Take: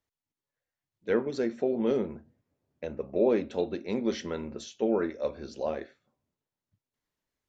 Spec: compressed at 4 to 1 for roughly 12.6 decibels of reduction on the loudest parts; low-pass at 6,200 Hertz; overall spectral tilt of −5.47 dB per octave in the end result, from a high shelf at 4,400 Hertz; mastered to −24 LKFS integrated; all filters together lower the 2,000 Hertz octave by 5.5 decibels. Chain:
low-pass filter 6,200 Hz
parametric band 2,000 Hz −8.5 dB
high-shelf EQ 4,400 Hz +6.5 dB
downward compressor 4 to 1, threshold −36 dBFS
level +16.5 dB

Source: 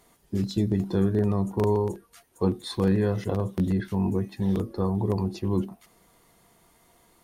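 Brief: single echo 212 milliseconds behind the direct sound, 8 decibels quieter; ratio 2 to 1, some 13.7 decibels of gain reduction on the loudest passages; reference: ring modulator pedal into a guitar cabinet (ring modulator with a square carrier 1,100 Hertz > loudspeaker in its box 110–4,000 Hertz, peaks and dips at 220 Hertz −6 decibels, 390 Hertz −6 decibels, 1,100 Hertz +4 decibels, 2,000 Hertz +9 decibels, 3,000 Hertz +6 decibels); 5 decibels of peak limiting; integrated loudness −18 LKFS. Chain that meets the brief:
downward compressor 2 to 1, threshold −45 dBFS
brickwall limiter −29.5 dBFS
single-tap delay 212 ms −8 dB
ring modulator with a square carrier 1,100 Hz
loudspeaker in its box 110–4,000 Hz, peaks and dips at 220 Hz −6 dB, 390 Hz −6 dB, 1,100 Hz +4 dB, 2,000 Hz +9 dB, 3,000 Hz +6 dB
level +18 dB

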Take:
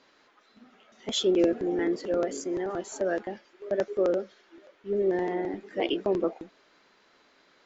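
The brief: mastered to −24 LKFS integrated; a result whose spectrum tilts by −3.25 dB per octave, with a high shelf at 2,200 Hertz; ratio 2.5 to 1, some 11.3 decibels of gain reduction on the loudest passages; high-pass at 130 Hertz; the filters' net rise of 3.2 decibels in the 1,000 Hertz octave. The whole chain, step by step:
high-pass filter 130 Hz
parametric band 1,000 Hz +4 dB
high-shelf EQ 2,200 Hz +5 dB
downward compressor 2.5 to 1, threshold −36 dBFS
level +12.5 dB

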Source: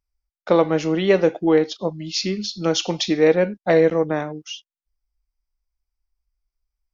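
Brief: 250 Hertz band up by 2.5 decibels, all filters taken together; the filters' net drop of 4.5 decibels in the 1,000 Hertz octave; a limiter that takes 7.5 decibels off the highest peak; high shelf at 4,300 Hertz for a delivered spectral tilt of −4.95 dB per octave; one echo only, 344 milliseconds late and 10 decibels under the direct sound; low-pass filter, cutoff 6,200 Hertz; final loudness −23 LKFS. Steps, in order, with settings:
low-pass filter 6,200 Hz
parametric band 250 Hz +4.5 dB
parametric band 1,000 Hz −7 dB
high-shelf EQ 4,300 Hz +5.5 dB
brickwall limiter −11 dBFS
single-tap delay 344 ms −10 dB
level −1 dB

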